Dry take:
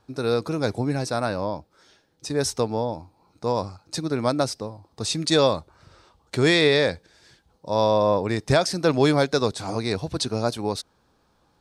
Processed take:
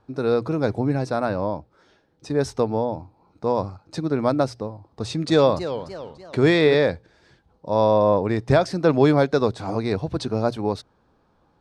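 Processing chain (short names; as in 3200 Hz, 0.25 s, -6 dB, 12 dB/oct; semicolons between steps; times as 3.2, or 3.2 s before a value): LPF 1400 Hz 6 dB/oct; notches 60/120 Hz; 4.71–6.75 warbling echo 0.288 s, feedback 42%, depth 200 cents, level -11.5 dB; gain +3 dB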